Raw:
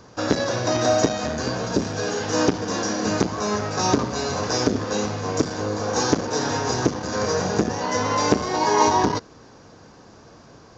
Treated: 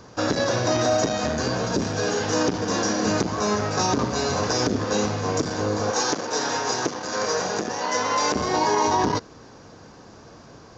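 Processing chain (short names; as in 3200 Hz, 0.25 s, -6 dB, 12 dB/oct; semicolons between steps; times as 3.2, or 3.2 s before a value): 5.91–8.35 HPF 560 Hz 6 dB/oct; limiter -13.5 dBFS, peak gain reduction 8.5 dB; gain +1.5 dB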